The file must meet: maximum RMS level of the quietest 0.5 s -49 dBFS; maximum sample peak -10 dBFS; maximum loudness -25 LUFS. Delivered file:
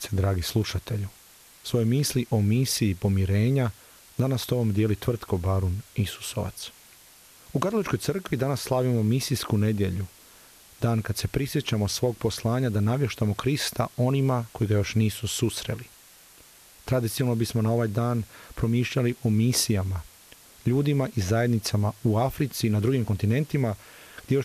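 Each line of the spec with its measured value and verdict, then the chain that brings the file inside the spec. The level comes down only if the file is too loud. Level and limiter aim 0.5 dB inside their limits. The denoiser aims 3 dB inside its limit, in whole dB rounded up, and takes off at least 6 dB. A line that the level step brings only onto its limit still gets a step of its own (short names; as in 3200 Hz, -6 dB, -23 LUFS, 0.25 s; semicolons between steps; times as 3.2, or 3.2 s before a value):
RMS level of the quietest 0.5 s -53 dBFS: OK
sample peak -9.0 dBFS: fail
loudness -26.0 LUFS: OK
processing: limiter -10.5 dBFS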